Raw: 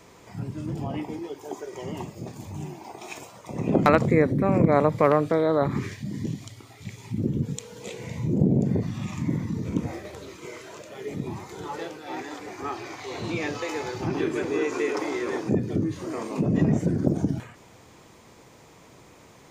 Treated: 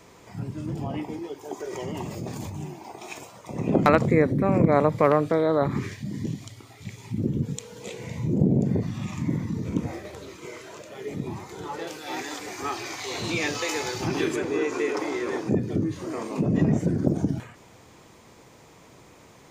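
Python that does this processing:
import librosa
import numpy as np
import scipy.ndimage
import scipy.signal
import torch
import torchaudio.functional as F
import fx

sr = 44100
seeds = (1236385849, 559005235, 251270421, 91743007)

y = fx.env_flatten(x, sr, amount_pct=70, at=(1.6, 2.5))
y = fx.high_shelf(y, sr, hz=2500.0, db=11.5, at=(11.87, 14.36))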